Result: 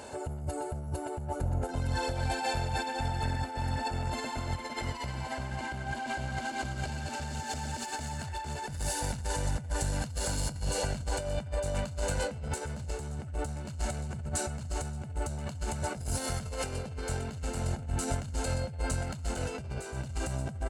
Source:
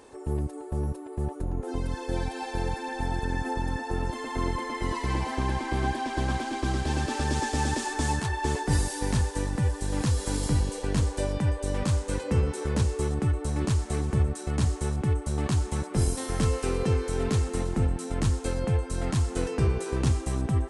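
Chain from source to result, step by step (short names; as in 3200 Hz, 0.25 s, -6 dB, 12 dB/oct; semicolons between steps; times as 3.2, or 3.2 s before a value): in parallel at -6.5 dB: one-sided clip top -29 dBFS; on the sum: ripple EQ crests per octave 1.4, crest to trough 6 dB; limiter -18.5 dBFS, peak gain reduction 9.5 dB; soft clip -23 dBFS, distortion -16 dB; HPF 64 Hz 12 dB/oct; on a send: thin delay 0.124 s, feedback 48%, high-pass 1900 Hz, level -9 dB; on the sum: negative-ratio compressor -34 dBFS, ratio -0.5; comb 1.4 ms, depth 64%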